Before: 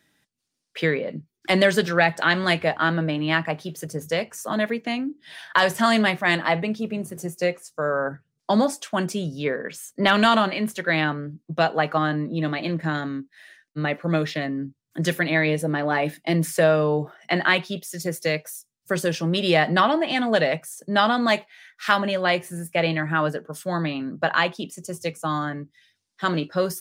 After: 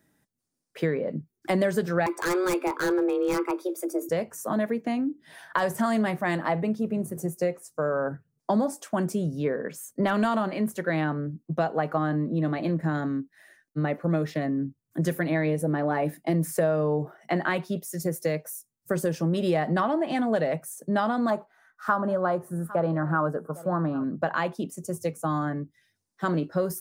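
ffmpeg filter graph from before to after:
-filter_complex "[0:a]asettb=1/sr,asplit=3[a][b][c];[a]atrim=end=2.064[d];[b]atrim=start=2.06:end=4.09,asetpts=PTS-STARTPTS,afade=t=in:d=0.004:c=qsin,afade=t=out:st=2.026:d=0.004:c=qsin,aecho=1:1:0.9:0.72,atrim=end_sample=89523,afreqshift=180,aeval=exprs='0.168*(abs(mod(val(0)/0.168+3,4)-2)-1)':c=same[e];[c]atrim=start=4.086[f];[d][e]acrossfade=d=0.004:c1=hsin:c2=qsin[g];[g][f]acrossfade=d=0.004:c1=qsin:c2=hsin,asettb=1/sr,asplit=3[h][i][j];[h]atrim=end=21.304[k];[i]atrim=start=21.3:end=24.04,asetpts=PTS-STARTPTS,afade=t=in:d=0.004:c=qsin,afade=t=out:st=2.736:d=0.004:c=qsin,highshelf=f=1.7k:t=q:w=3:g=-8.5,aecho=1:1:805:0.0708,atrim=end_sample=120834[l];[j]atrim=start=24.036[m];[k][l]acrossfade=d=0.004:c1=hsin:c2=qsin[n];[n][m]acrossfade=d=0.004:c1=qsin:c2=hsin,equalizer=f=3.3k:w=0.64:g=-14.5,acompressor=threshold=-25dB:ratio=2.5,volume=2dB"

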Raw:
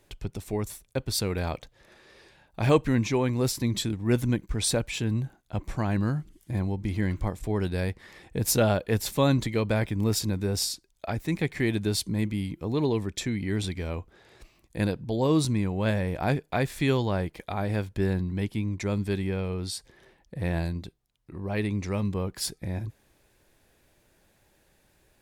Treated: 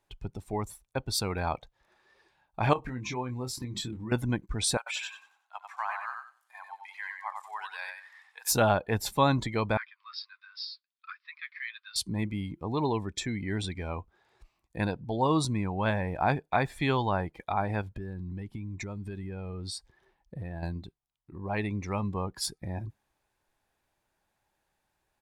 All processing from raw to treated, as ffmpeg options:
-filter_complex "[0:a]asettb=1/sr,asplit=3[a][b][c];[a]atrim=end=2.734[d];[b]atrim=start=2.73:end=4.12,asetpts=PTS-STARTPTS,afade=t=in:d=0.004:c=qsin,afade=t=out:st=1.386:d=0.004:c=qsin,acompressor=threshold=-29dB:ratio=8:attack=3.2:release=140:knee=1:detection=peak,asplit=2[e][f];[f]adelay=24,volume=-6dB[g];[e][g]amix=inputs=2:normalize=0,atrim=end_sample=61299[h];[c]atrim=start=4.116[i];[d][h]acrossfade=d=0.004:c1=hsin:c2=qsin[j];[j][i]acrossfade=d=0.004:c1=qsin:c2=hsin,asettb=1/sr,asplit=3[k][l][m];[k]atrim=end=4.774[n];[l]atrim=start=4.77:end=8.52,asetpts=PTS-STARTPTS,afade=t=in:d=0.004:c=qsin,afade=t=out:st=3.746:d=0.004:c=qsin,highpass=f=920:w=0.5412,highpass=f=920:w=1.3066,aecho=1:1:93|186|279|372|465:0.631|0.24|0.0911|0.0346|0.0132,atrim=end_sample=165375[o];[m]atrim=start=8.516[p];[n][o]acrossfade=d=0.004:c1=hsin:c2=qsin[q];[q][p]acrossfade=d=0.004:c1=qsin:c2=hsin,asettb=1/sr,asplit=3[r][s][t];[r]atrim=end=9.774[u];[s]atrim=start=9.77:end=11.96,asetpts=PTS-STARTPTS,afade=t=in:d=0.004:c=qsin,afade=t=out:st=2.186:d=0.004:c=qsin,asuperpass=centerf=2400:order=20:qfactor=0.59,flanger=delay=2.2:depth=9.7:regen=45:speed=1.4:shape=triangular[v];[t]atrim=start=11.956[w];[u][v]acrossfade=d=0.004:c1=hsin:c2=qsin[x];[x][w]acrossfade=d=0.004:c1=qsin:c2=hsin,asettb=1/sr,asplit=3[y][z][aa];[y]atrim=end=17.814[ab];[z]atrim=start=17.81:end=20.63,asetpts=PTS-STARTPTS,afade=t=in:d=0.004:c=qsin,afade=t=out:st=2.816:d=0.004:c=qsin,lowshelf=f=120:g=4.5,acompressor=threshold=-30dB:ratio=6:attack=3.2:release=140:knee=1:detection=peak[ac];[aa]atrim=start=20.626[ad];[ab][ac]acrossfade=d=0.004:c1=hsin:c2=qsin[ae];[ae][ad]acrossfade=d=0.004:c1=qsin:c2=hsin,afftdn=nr=13:nf=-42,firequalizer=gain_entry='entry(520,0);entry(830,11);entry(1900,4);entry(13000,1)':delay=0.05:min_phase=1,volume=-4dB"

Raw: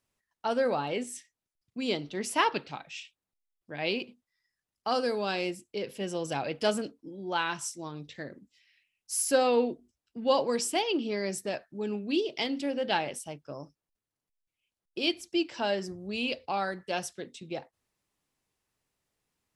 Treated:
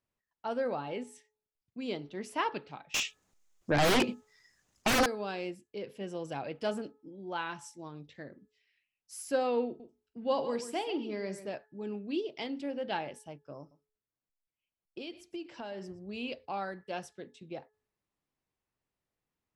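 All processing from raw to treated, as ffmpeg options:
-filter_complex "[0:a]asettb=1/sr,asplit=3[a][b][c];[a]atrim=end=2.944[d];[b]atrim=start=2.94:end=5.06,asetpts=PTS-STARTPTS,afade=t=in:d=0.004:c=qsin,afade=t=out:st=2.116:d=0.004:c=qsin,equalizer=f=6.7k:w=2:g=13,aeval=exprs='0.188*sin(PI/2*7.94*val(0)/0.188)':c=same[e];[c]atrim=start=5.056[f];[d][e]acrossfade=d=0.004:c1=hsin:c2=qsin[g];[g][f]acrossfade=d=0.004:c1=qsin:c2=hsin,asettb=1/sr,asplit=3[h][i][j];[h]atrim=end=9.664[k];[i]atrim=start=9.66:end=11.47,asetpts=PTS-STARTPTS,afade=t=in:d=0.004:c=qsin,afade=t=out:st=1.806:d=0.004:c=qsin,asplit=2[l][m];[m]adelay=47,volume=-13.5dB[n];[l][n]amix=inputs=2:normalize=0,atrim=end_sample=79821,aecho=1:1:137:0.251,atrim=end_sample=79821[o];[j]atrim=start=11.466[p];[k][o]acrossfade=d=0.004:c1=hsin:c2=qsin[q];[q][p]acrossfade=d=0.004:c1=qsin:c2=hsin,asettb=1/sr,asplit=3[r][s][t];[r]atrim=end=13.594[u];[s]atrim=start=13.59:end=16.07,asetpts=PTS-STARTPTS,afade=t=in:d=0.004:c=qsin,afade=t=out:st=2.476:d=0.004:c=qsin,acompressor=threshold=-31dB:ratio=6:attack=3.2:release=140:knee=1:detection=peak,aecho=1:1:119:0.133,atrim=end_sample=109368[v];[t]atrim=start=16.066[w];[u][v]acrossfade=d=0.004:c1=hsin:c2=qsin[x];[x][w]acrossfade=d=0.004:c1=qsin:c2=hsin,highshelf=f=3.5k:g=-10.5,bandreject=f=427.9:t=h:w=4,bandreject=f=855.8:t=h:w=4,bandreject=f=1.2837k:t=h:w=4,bandreject=f=1.7116k:t=h:w=4,volume=-5dB"

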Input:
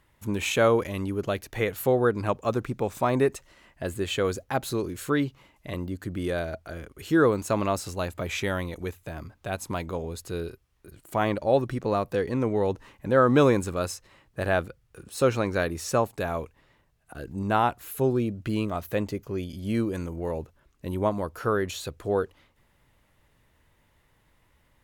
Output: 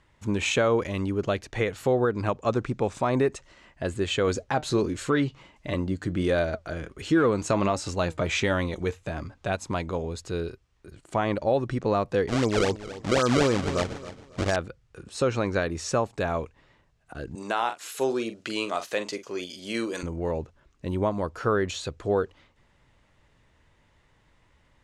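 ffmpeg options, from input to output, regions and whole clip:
-filter_complex "[0:a]asettb=1/sr,asplit=3[a][b][c];[a]atrim=end=4.274[d];[b]atrim=start=4.27:end=9.56,asetpts=PTS-STARTPTS,afade=t=in:d=0.004:c=qsin,afade=t=out:st=5.286:d=0.004:c=qsin,acontrast=81,flanger=delay=3.3:depth=3.3:regen=74:speed=1.4:shape=sinusoidal[e];[c]atrim=start=9.556[f];[d][e]acrossfade=d=0.004:c1=hsin:c2=qsin[g];[g][f]acrossfade=d=0.004:c1=qsin:c2=hsin,asettb=1/sr,asplit=3[h][i][j];[h]atrim=end=12.284[k];[i]atrim=start=12.28:end=14.56,asetpts=PTS-STARTPTS,afade=t=in:d=0.004:c=qsin,afade=t=out:st=2.276:d=0.004:c=qsin,acrusher=samples=29:mix=1:aa=0.000001:lfo=1:lforange=46.4:lforate=3.9,aecho=1:1:273|546|819:0.158|0.0444|0.0124,atrim=end_sample=100548[l];[j]atrim=start=14.556[m];[k][l]acrossfade=d=0.004:c1=hsin:c2=qsin[n];[n][m]acrossfade=d=0.004:c1=qsin:c2=hsin,asettb=1/sr,asplit=3[o][p][q];[o]atrim=end=17.354[r];[p]atrim=start=17.35:end=20.03,asetpts=PTS-STARTPTS,afade=t=in:d=0.004:c=qsin,afade=t=out:st=2.676:d=0.004:c=qsin,highpass=390,highshelf=f=2.6k:g=11,asplit=2[s][t];[t]adelay=44,volume=-11dB[u];[s][u]amix=inputs=2:normalize=0,atrim=end_sample=118188[v];[q]atrim=start=20.026[w];[r][v]acrossfade=d=0.004:c1=hsin:c2=qsin[x];[x][w]acrossfade=d=0.004:c1=qsin:c2=hsin,lowpass=f=7.9k:w=0.5412,lowpass=f=7.9k:w=1.3066,alimiter=limit=-15.5dB:level=0:latency=1:release=167,volume=2dB"

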